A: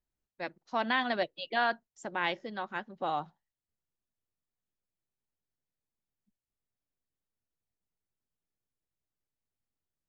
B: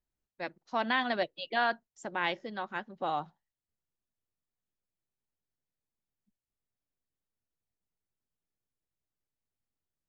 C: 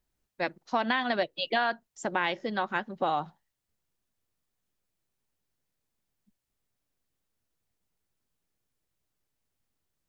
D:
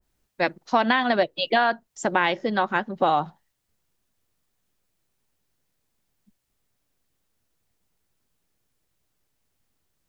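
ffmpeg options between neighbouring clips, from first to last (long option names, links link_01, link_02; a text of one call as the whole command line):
ffmpeg -i in.wav -af anull out.wav
ffmpeg -i in.wav -af "acompressor=threshold=-32dB:ratio=6,volume=8.5dB" out.wav
ffmpeg -i in.wav -af "adynamicequalizer=threshold=0.01:dfrequency=1500:dqfactor=0.7:tfrequency=1500:tqfactor=0.7:attack=5:release=100:ratio=0.375:range=3:mode=cutabove:tftype=highshelf,volume=7.5dB" out.wav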